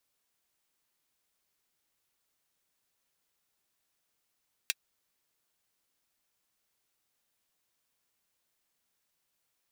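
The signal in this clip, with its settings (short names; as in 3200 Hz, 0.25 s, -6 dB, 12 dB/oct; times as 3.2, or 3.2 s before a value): closed hi-hat, high-pass 2300 Hz, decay 0.04 s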